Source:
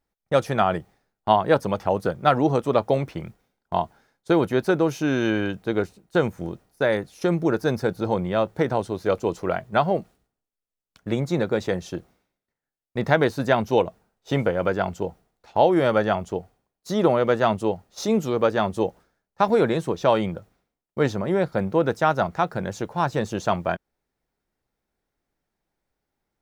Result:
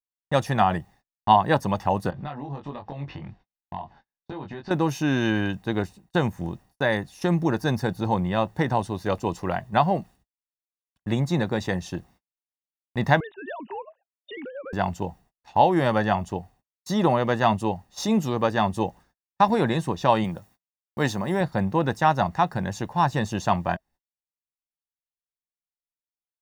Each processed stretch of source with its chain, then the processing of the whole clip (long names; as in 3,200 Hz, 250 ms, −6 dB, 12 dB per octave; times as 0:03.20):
0:02.10–0:04.71: low-pass filter 4,600 Hz 24 dB per octave + downward compressor 5 to 1, threshold −34 dBFS + double-tracking delay 21 ms −3.5 dB
0:13.20–0:14.73: three sine waves on the formant tracks + downward compressor 5 to 1, threshold −30 dBFS
0:20.24–0:21.41: high-pass filter 150 Hz 6 dB per octave + high-shelf EQ 6,000 Hz +9.5 dB
whole clip: noise gate −53 dBFS, range −34 dB; notch filter 650 Hz, Q 17; comb filter 1.1 ms, depth 53%